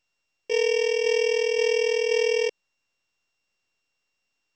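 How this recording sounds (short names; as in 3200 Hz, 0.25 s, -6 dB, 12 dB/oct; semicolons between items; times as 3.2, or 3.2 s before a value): a buzz of ramps at a fixed pitch in blocks of 16 samples; tremolo saw down 1.9 Hz, depth 30%; µ-law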